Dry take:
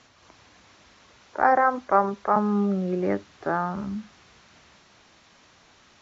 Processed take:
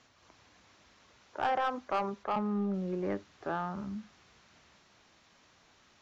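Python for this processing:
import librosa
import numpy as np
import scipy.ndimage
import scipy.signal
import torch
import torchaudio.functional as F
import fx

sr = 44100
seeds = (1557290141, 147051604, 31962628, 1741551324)

y = fx.high_shelf(x, sr, hz=4900.0, db=-11.0, at=(2.23, 2.74))
y = 10.0 ** (-16.0 / 20.0) * np.tanh(y / 10.0 ** (-16.0 / 20.0))
y = y * librosa.db_to_amplitude(-7.5)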